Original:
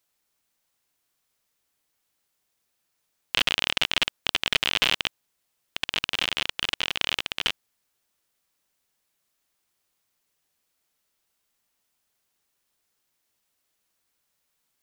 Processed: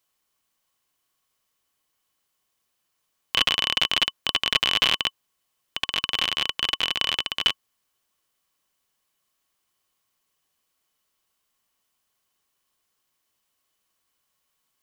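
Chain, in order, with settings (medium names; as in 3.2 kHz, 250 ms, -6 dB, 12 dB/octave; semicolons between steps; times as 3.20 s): small resonant body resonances 1.1/3 kHz, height 11 dB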